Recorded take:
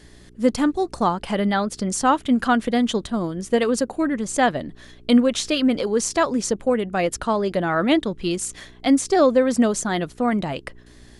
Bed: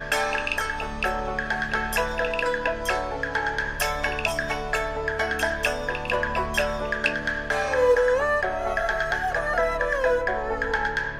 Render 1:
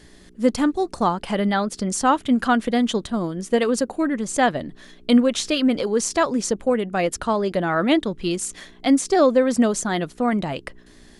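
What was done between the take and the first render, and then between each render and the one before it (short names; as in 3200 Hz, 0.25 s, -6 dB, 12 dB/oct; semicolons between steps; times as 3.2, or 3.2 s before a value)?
de-hum 60 Hz, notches 2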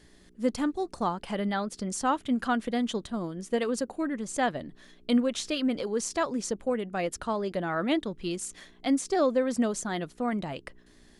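gain -8.5 dB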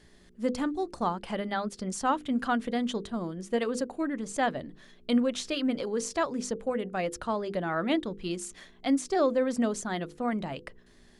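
high shelf 6200 Hz -4.5 dB; notches 50/100/150/200/250/300/350/400/450/500 Hz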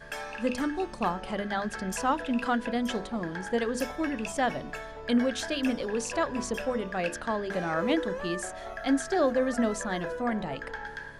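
add bed -13.5 dB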